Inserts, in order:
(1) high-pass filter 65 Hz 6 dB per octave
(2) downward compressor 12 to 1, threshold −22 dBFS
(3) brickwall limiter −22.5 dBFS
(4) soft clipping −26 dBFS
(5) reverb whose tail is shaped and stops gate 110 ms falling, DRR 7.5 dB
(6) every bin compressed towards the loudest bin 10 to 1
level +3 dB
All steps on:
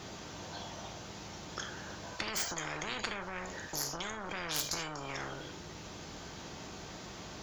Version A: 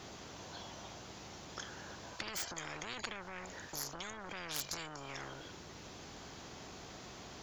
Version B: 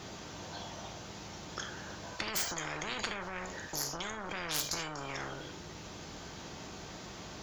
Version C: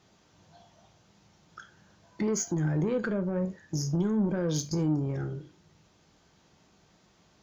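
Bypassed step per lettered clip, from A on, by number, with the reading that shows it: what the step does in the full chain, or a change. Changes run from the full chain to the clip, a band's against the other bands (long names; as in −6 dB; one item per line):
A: 5, change in momentary loudness spread −1 LU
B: 2, average gain reduction 4.5 dB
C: 6, 250 Hz band +18.0 dB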